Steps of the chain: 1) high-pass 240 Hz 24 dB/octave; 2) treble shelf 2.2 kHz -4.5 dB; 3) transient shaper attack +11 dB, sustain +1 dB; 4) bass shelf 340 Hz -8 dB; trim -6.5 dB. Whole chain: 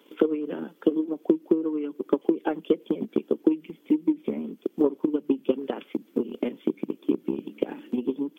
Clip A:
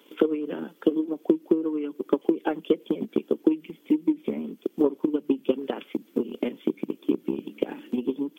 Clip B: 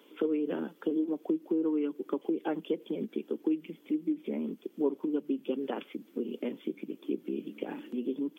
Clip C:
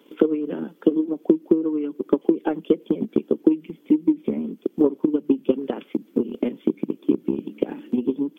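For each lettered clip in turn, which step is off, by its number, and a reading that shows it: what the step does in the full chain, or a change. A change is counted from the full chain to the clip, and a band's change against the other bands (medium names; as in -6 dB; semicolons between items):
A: 2, 2 kHz band +2.0 dB; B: 3, crest factor change -4.5 dB; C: 4, 1 kHz band -3.5 dB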